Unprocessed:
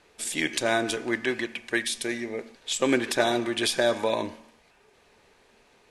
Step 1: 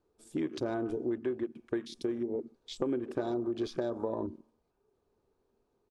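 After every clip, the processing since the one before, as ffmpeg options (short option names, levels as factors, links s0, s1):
-af "afwtdn=0.0224,firequalizer=gain_entry='entry(110,0);entry(180,-4);entry(370,1);entry(570,-8);entry(1300,-10);entry(1900,-24);entry(4500,-16)':delay=0.05:min_phase=1,acompressor=threshold=0.0158:ratio=6,volume=2"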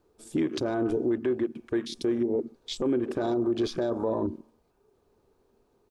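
-af "alimiter=level_in=1.5:limit=0.0631:level=0:latency=1:release=11,volume=0.668,volume=2.66"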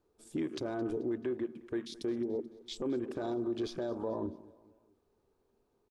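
-af "aecho=1:1:217|434|651:0.0944|0.0444|0.0209,volume=0.398"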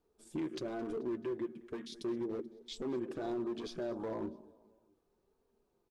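-af "asoftclip=type=hard:threshold=0.0299,flanger=delay=4.2:depth=2:regen=-38:speed=1.1:shape=triangular,volume=1.19"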